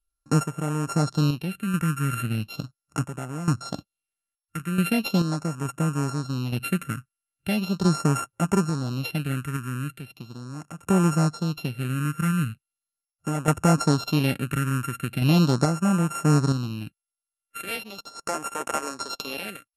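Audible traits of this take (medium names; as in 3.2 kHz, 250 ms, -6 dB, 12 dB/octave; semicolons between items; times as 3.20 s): a buzz of ramps at a fixed pitch in blocks of 32 samples; phasing stages 4, 0.39 Hz, lowest notch 700–4200 Hz; random-step tremolo 2.3 Hz, depth 85%; MP2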